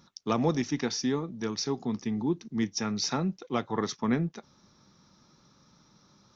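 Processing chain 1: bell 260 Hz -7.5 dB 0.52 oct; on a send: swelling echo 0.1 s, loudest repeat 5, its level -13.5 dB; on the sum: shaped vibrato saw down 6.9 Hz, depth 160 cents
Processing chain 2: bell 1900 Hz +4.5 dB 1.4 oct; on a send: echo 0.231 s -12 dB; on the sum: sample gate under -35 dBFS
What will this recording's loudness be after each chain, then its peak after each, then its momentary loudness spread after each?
-32.0, -30.0 LUFS; -13.5, -12.0 dBFS; 15, 5 LU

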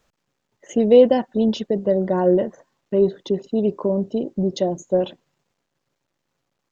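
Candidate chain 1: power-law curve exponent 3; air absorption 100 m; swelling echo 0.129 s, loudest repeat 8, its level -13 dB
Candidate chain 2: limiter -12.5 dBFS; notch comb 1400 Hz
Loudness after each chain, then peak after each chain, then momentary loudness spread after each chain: -28.0, -24.0 LUFS; -3.0, -12.5 dBFS; 21, 6 LU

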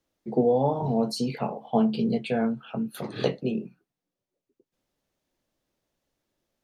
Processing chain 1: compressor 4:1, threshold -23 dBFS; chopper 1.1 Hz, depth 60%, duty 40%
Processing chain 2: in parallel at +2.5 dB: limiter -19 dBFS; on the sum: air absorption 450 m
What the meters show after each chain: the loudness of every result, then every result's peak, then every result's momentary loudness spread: -33.0, -22.0 LUFS; -16.5, -7.5 dBFS; 11, 8 LU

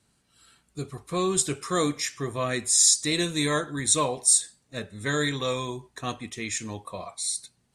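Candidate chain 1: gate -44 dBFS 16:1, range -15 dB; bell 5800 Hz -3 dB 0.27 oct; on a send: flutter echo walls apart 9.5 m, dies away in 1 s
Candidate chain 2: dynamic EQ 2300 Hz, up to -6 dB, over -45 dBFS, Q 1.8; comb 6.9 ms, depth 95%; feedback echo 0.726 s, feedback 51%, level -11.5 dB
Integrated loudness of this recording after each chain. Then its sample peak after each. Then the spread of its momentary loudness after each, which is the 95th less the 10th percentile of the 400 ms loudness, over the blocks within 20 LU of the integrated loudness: -22.5, -22.0 LUFS; -5.0, -4.0 dBFS; 15, 16 LU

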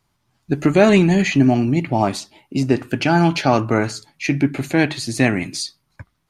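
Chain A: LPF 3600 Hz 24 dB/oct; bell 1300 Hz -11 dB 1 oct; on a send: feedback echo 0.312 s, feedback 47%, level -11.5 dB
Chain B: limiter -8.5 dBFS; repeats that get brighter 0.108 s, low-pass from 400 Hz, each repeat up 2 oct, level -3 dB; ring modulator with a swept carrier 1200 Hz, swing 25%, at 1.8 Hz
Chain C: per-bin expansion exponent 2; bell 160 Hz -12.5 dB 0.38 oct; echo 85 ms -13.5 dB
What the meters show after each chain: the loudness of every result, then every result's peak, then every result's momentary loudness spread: -19.0, -20.0, -23.0 LUFS; -2.5, -3.0, -5.0 dBFS; 13, 9, 14 LU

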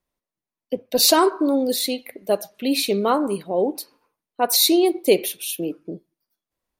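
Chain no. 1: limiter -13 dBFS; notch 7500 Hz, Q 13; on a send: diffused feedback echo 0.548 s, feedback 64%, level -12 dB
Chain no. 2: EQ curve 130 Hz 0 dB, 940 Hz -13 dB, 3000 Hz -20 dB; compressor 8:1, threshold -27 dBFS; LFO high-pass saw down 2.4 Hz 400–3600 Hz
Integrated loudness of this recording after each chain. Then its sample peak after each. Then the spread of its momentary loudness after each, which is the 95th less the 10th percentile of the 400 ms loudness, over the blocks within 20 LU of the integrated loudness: -24.0, -37.0 LUFS; -11.5, -17.5 dBFS; 13, 15 LU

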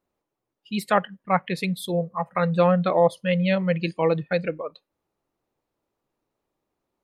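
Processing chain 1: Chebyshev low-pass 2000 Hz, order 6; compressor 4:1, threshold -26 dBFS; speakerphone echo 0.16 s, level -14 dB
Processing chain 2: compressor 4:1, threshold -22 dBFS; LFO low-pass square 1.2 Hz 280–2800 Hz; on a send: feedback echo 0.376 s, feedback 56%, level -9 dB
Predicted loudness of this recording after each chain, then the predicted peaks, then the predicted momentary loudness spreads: -31.0, -27.5 LUFS; -13.5, -9.5 dBFS; 6, 16 LU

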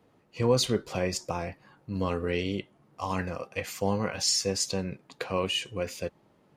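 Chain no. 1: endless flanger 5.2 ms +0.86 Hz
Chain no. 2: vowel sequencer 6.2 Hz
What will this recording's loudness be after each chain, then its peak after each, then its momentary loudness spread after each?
-33.5, -40.5 LUFS; -16.0, -19.5 dBFS; 14, 19 LU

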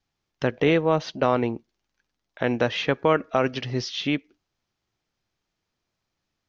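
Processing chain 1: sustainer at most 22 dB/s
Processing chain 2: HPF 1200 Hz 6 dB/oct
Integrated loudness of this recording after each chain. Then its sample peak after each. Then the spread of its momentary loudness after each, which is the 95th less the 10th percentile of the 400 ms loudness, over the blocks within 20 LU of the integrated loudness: -22.0, -30.5 LUFS; -6.0, -11.5 dBFS; 20, 7 LU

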